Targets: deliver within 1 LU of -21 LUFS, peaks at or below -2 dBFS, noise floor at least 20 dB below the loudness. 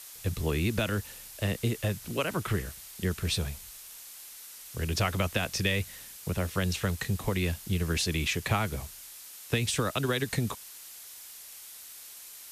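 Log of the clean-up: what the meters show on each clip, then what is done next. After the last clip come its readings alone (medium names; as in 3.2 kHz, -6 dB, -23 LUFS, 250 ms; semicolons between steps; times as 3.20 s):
noise floor -47 dBFS; noise floor target -51 dBFS; loudness -31.0 LUFS; peak level -13.5 dBFS; loudness target -21.0 LUFS
-> noise reduction 6 dB, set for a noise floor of -47 dBFS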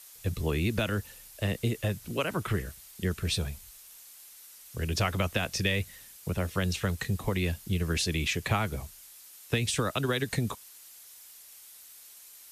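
noise floor -51 dBFS; loudness -31.0 LUFS; peak level -13.5 dBFS; loudness target -21.0 LUFS
-> trim +10 dB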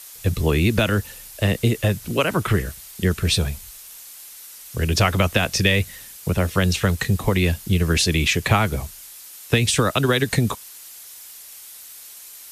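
loudness -21.0 LUFS; peak level -3.5 dBFS; noise floor -41 dBFS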